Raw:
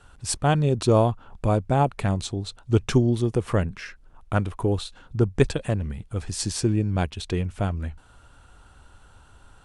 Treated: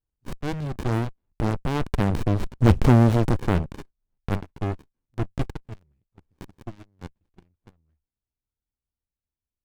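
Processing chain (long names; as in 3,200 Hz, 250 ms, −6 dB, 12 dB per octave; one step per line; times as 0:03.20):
source passing by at 0:02.74, 9 m/s, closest 1.6 metres
leveller curve on the samples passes 5
windowed peak hold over 65 samples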